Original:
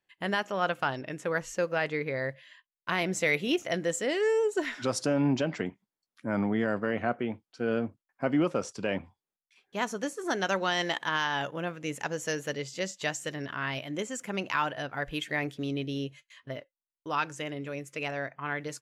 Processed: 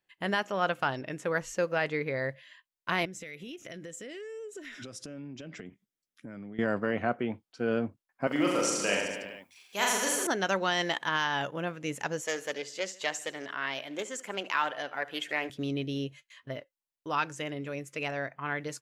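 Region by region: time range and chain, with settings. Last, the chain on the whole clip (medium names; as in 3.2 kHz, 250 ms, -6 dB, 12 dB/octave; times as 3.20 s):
3.05–6.59 s: peaking EQ 880 Hz -13.5 dB 0.87 oct + band-stop 4.4 kHz, Q 8.3 + compression 12:1, threshold -39 dBFS
8.27–10.27 s: RIAA curve recording + reverse bouncing-ball echo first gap 40 ms, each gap 1.1×, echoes 8, each echo -2 dB
12.21–15.50 s: high-pass 350 Hz + feedback delay 73 ms, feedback 46%, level -18.5 dB + loudspeaker Doppler distortion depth 0.13 ms
whole clip: none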